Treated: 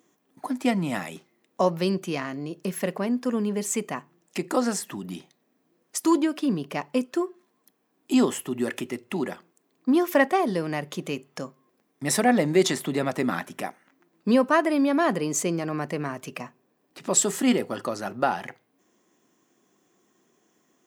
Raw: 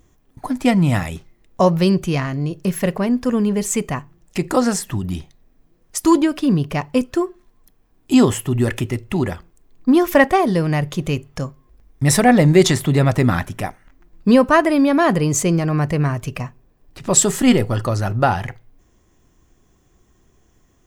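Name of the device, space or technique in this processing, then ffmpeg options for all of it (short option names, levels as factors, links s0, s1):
parallel compression: -filter_complex "[0:a]asplit=2[s0][s1];[s1]acompressor=threshold=0.0501:ratio=6,volume=0.631[s2];[s0][s2]amix=inputs=2:normalize=0,highpass=f=200:w=0.5412,highpass=f=200:w=1.3066,volume=0.398"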